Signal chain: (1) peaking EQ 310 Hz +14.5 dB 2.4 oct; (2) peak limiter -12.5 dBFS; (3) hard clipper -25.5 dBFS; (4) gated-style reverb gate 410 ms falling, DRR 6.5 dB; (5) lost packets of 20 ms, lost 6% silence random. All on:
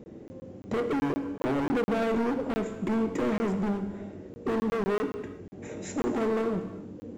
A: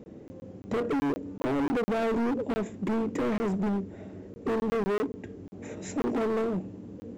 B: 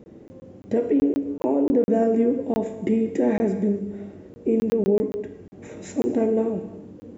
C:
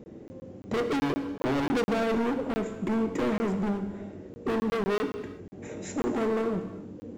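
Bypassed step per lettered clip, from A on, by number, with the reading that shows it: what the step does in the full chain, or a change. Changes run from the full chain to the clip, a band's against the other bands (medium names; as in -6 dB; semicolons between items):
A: 4, momentary loudness spread change +1 LU; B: 3, distortion -6 dB; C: 2, 4 kHz band +4.0 dB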